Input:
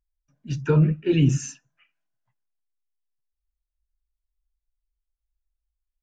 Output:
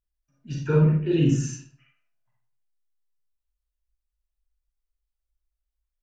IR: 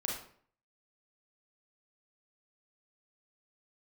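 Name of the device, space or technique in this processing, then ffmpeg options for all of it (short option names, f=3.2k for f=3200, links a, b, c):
bathroom: -filter_complex "[1:a]atrim=start_sample=2205[a];[0:a][a]afir=irnorm=-1:irlink=0,asettb=1/sr,asplit=3[b][c][d];[b]atrim=end=1.074[e];[c]atrim=start=1.07:end=1.47,asetpts=PTS-STARTPTS,afade=t=in:d=0.004:c=qsin,afade=t=out:st=0.396:d=0.004:c=qsin,bandreject=f=2.3k:w=7.1[f];[d]atrim=start=1.466[g];[e][f]acrossfade=d=0.004:c1=hsin:c2=qsin[h];[h][g]acrossfade=d=0.004:c1=qsin:c2=hsin,volume=-4dB"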